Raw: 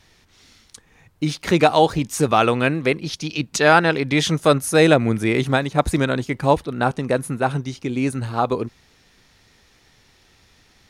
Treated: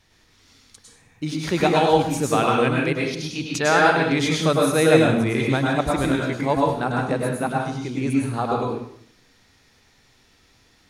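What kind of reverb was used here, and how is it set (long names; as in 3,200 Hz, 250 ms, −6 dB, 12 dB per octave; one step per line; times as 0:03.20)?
dense smooth reverb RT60 0.66 s, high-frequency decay 0.9×, pre-delay 90 ms, DRR −2 dB
level −6 dB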